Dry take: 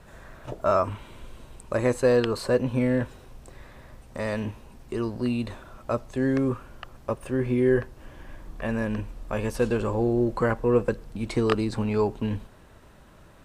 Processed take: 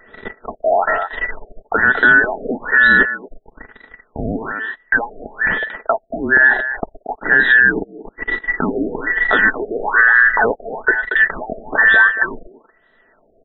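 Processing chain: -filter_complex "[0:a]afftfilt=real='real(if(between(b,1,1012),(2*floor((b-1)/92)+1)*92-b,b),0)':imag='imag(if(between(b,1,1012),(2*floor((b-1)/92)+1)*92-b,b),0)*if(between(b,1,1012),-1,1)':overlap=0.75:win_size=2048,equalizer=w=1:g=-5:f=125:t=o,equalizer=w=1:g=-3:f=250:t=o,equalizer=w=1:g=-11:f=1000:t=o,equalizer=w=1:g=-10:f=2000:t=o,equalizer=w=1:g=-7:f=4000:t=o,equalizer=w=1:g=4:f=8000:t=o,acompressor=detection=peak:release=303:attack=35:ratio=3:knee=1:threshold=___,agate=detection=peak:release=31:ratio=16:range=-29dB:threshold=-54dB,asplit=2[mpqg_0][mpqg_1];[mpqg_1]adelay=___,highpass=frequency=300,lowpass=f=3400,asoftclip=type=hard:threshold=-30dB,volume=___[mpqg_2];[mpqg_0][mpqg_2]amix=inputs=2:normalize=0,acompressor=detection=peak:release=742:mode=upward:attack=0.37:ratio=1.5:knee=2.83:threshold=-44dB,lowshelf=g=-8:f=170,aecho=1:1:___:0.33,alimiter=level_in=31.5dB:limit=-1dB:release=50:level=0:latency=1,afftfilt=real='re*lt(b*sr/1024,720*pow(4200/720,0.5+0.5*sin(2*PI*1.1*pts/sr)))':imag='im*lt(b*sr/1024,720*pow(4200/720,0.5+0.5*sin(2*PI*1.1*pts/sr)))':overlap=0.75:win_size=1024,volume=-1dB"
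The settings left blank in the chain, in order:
-40dB, 230, -12dB, 4.6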